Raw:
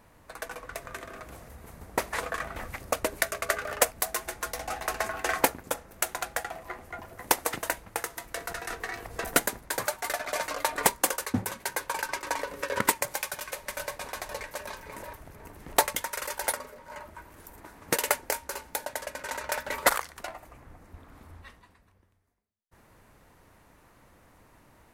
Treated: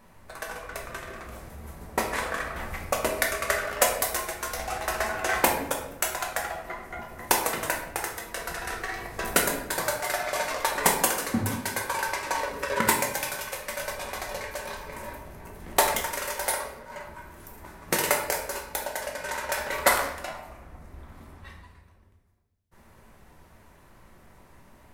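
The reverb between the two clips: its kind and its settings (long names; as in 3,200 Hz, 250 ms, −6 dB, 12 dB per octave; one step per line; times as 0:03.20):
rectangular room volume 230 cubic metres, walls mixed, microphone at 1.1 metres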